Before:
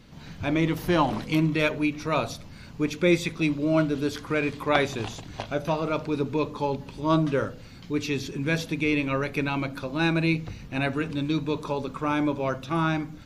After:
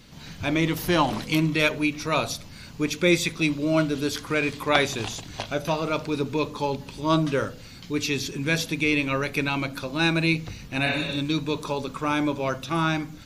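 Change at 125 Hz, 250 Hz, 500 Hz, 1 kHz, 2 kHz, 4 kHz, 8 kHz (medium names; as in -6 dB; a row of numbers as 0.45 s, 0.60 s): 0.0 dB, 0.0 dB, +0.5 dB, +1.0 dB, +3.5 dB, +6.5 dB, +8.0 dB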